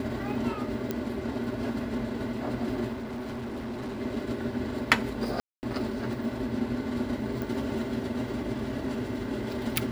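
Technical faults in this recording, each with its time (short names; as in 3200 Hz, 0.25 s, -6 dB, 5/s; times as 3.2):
0.91 pop -16 dBFS
2.92–4.01 clipped -32.5 dBFS
5.4–5.63 gap 0.229 s
7.42 pop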